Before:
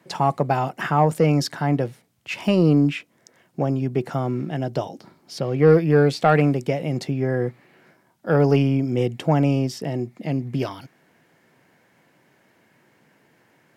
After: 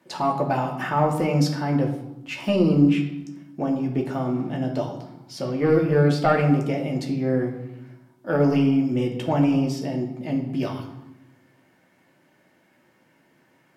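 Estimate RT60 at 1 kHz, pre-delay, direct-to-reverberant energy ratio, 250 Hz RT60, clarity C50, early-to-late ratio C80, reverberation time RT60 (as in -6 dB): 0.95 s, 3 ms, -0.5 dB, 1.4 s, 7.5 dB, 10.0 dB, 0.95 s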